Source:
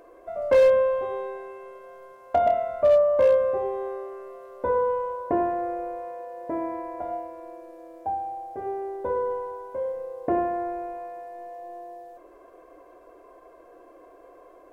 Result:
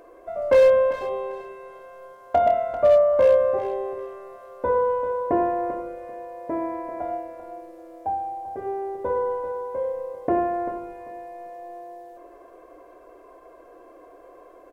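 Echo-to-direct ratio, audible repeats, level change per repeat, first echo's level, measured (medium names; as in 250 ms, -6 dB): -11.0 dB, 2, -12.0 dB, -11.5 dB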